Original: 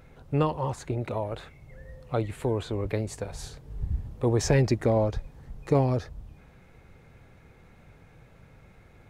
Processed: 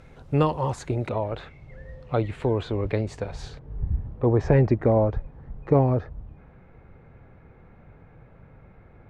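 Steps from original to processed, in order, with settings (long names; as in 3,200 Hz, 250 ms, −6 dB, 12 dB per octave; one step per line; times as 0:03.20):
low-pass filter 9,300 Hz 12 dB per octave, from 0:01.09 4,100 Hz, from 0:03.59 1,600 Hz
level +3.5 dB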